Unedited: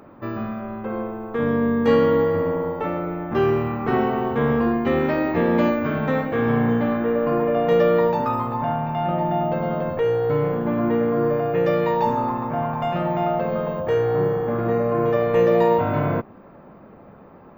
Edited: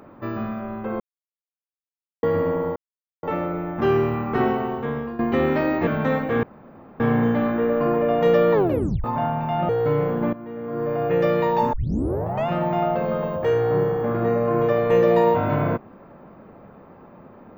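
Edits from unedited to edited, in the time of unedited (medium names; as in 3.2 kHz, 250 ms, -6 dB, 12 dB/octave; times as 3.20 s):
1.00–2.23 s: mute
2.76 s: insert silence 0.47 s
3.92–4.72 s: fade out, to -15 dB
5.40–5.90 s: delete
6.46 s: insert room tone 0.57 s
7.99 s: tape stop 0.51 s
9.15–10.13 s: delete
10.77–11.49 s: fade in quadratic, from -17 dB
12.17 s: tape start 0.74 s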